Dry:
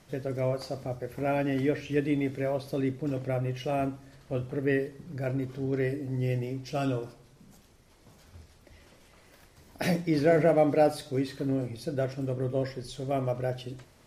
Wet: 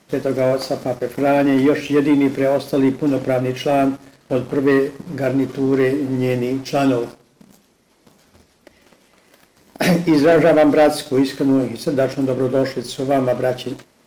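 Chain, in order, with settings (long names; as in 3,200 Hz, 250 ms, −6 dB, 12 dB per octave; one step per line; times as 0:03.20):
high-pass filter 42 Hz
low shelf with overshoot 150 Hz −9 dB, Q 1.5
leveller curve on the samples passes 2
in parallel at −10.5 dB: gain into a clipping stage and back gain 30.5 dB
on the sum: level +5 dB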